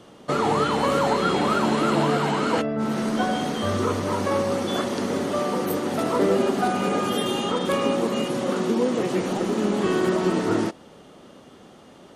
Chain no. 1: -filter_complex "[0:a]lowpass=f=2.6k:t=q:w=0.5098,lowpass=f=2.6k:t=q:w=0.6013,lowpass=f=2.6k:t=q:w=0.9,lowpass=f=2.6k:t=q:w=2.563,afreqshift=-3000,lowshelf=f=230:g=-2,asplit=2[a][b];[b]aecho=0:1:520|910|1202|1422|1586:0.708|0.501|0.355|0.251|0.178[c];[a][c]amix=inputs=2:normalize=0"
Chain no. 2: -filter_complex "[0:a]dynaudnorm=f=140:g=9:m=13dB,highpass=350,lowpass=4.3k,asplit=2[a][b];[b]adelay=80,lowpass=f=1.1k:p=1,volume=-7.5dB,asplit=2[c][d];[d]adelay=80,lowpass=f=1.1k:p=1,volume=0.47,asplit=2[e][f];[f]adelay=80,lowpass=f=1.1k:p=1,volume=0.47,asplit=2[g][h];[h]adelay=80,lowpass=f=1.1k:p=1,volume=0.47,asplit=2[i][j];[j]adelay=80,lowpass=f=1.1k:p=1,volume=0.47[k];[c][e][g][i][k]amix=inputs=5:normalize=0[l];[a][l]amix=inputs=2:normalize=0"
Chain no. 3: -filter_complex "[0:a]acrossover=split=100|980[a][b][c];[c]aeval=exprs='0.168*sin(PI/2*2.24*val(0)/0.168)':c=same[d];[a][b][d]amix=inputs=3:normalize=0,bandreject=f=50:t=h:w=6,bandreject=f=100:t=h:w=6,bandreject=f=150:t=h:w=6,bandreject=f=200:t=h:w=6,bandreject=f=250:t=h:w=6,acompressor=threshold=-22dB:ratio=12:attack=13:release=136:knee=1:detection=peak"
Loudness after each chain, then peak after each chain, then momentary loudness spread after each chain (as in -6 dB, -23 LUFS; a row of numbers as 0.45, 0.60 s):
-18.0, -17.0, -24.0 LUFS; -5.5, -2.5, -12.5 dBFS; 4, 4, 6 LU